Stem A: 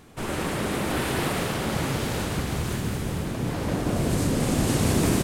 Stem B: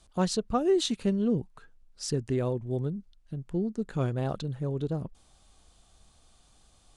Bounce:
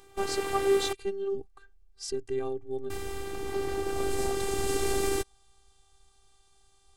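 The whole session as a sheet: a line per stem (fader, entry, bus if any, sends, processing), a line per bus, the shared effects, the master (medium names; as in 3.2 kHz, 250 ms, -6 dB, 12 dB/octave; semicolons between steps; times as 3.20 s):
-2.5 dB, 0.00 s, muted 0.93–2.90 s, no send, high-pass 45 Hz
-0.5 dB, 0.00 s, no send, none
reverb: none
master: robot voice 392 Hz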